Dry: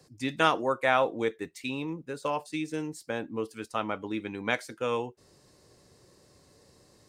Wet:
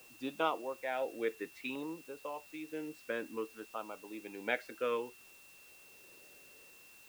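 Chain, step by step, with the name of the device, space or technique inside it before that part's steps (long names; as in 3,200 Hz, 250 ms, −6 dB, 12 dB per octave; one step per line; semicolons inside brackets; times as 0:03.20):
shortwave radio (band-pass filter 340–2,600 Hz; amplitude tremolo 0.63 Hz, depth 69%; auto-filter notch saw down 0.57 Hz 600–2,500 Hz; steady tone 2,700 Hz −58 dBFS; white noise bed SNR 20 dB)
level −1 dB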